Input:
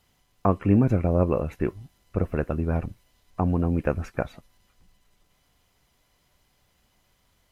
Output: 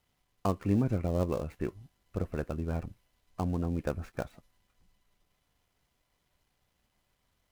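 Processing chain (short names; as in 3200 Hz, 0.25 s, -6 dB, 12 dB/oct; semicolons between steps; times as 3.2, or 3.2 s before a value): switching dead time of 0.085 ms; gain -8 dB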